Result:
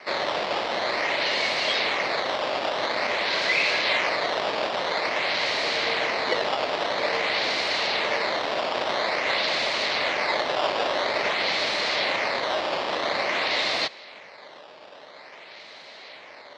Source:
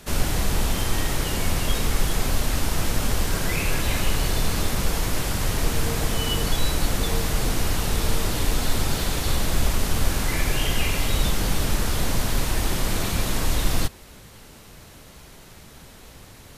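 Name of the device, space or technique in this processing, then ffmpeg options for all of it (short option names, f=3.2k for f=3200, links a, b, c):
circuit-bent sampling toy: -af "acrusher=samples=12:mix=1:aa=0.000001:lfo=1:lforange=19.2:lforate=0.49,highpass=570,equalizer=f=600:t=q:w=4:g=7,equalizer=f=1.4k:t=q:w=4:g=-4,equalizer=f=2.1k:t=q:w=4:g=7,equalizer=f=4.2k:t=q:w=4:g=8,lowpass=f=4.8k:w=0.5412,lowpass=f=4.8k:w=1.3066,volume=4dB"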